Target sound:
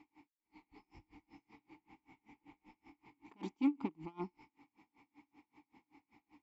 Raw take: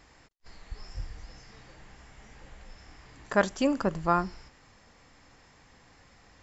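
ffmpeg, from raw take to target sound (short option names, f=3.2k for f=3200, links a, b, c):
-filter_complex "[0:a]volume=26dB,asoftclip=hard,volume=-26dB,asplit=3[a][b][c];[a]bandpass=f=300:t=q:w=8,volume=0dB[d];[b]bandpass=f=870:t=q:w=8,volume=-6dB[e];[c]bandpass=f=2.24k:t=q:w=8,volume=-9dB[f];[d][e][f]amix=inputs=3:normalize=0,aeval=exprs='val(0)*pow(10,-31*(0.5-0.5*cos(2*PI*5.2*n/s))/20)':c=same,volume=9.5dB"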